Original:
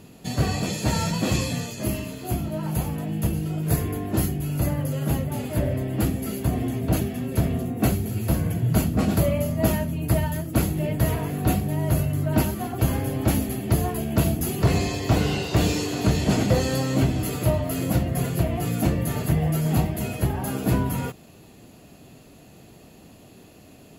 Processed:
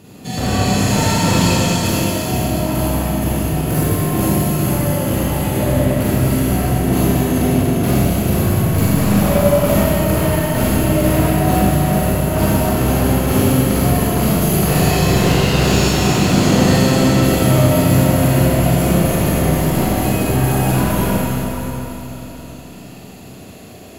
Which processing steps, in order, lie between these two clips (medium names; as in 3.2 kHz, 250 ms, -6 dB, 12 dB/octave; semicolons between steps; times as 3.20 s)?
high-pass 57 Hz 12 dB/octave; overload inside the chain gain 21.5 dB; bucket-brigade echo 108 ms, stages 2048, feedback 75%, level -12 dB; Schroeder reverb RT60 3.6 s, combs from 31 ms, DRR -9 dB; trim +2.5 dB